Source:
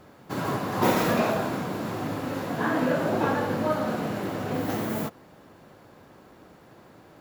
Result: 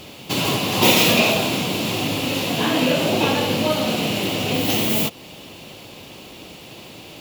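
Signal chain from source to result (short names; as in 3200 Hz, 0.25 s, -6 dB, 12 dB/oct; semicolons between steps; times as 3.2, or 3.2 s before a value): in parallel at +0.5 dB: compressor, threshold -37 dBFS, peak gain reduction 18.5 dB; on the sum: resonant high shelf 2100 Hz +9.5 dB, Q 3; gain +4 dB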